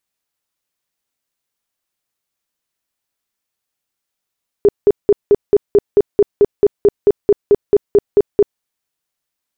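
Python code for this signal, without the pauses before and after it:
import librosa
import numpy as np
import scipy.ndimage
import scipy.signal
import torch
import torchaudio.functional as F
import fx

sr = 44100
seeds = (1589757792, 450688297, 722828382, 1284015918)

y = fx.tone_burst(sr, hz=409.0, cycles=15, every_s=0.22, bursts=18, level_db=-5.0)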